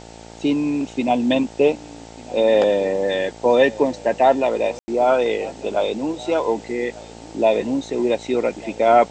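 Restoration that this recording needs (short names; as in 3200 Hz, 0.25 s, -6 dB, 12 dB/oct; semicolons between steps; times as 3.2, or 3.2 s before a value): de-hum 56.5 Hz, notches 16; room tone fill 4.79–4.88; denoiser 25 dB, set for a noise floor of -39 dBFS; inverse comb 1.198 s -21 dB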